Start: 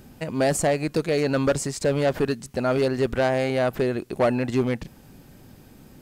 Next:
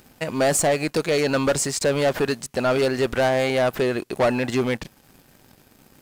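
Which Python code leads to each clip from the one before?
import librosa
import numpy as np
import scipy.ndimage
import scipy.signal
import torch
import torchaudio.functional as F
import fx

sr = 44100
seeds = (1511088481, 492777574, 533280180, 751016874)

y = fx.low_shelf(x, sr, hz=410.0, db=-9.5)
y = fx.leveller(y, sr, passes=2)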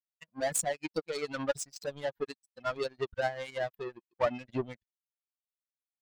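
y = fx.bin_expand(x, sr, power=3.0)
y = fx.power_curve(y, sr, exponent=2.0)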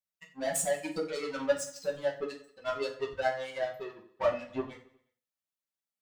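y = fx.echo_feedback(x, sr, ms=90, feedback_pct=56, wet_db=-20.0)
y = fx.rev_fdn(y, sr, rt60_s=0.39, lf_ratio=1.05, hf_ratio=0.85, size_ms=31.0, drr_db=-2.5)
y = F.gain(torch.from_numpy(y), -4.0).numpy()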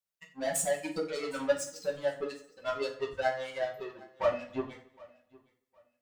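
y = fx.echo_feedback(x, sr, ms=762, feedback_pct=26, wet_db=-24)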